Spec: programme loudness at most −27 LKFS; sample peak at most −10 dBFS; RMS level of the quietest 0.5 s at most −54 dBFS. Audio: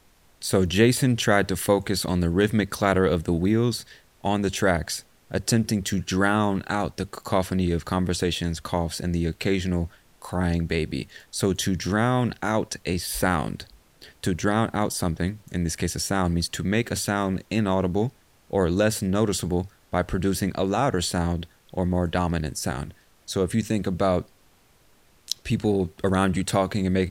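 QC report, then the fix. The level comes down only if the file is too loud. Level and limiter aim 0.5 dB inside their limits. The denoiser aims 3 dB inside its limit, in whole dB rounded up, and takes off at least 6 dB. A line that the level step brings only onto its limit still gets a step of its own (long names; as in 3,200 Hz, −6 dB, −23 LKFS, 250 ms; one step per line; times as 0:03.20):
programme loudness −25.0 LKFS: out of spec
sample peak −5.5 dBFS: out of spec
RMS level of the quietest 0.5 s −58 dBFS: in spec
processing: level −2.5 dB
brickwall limiter −10.5 dBFS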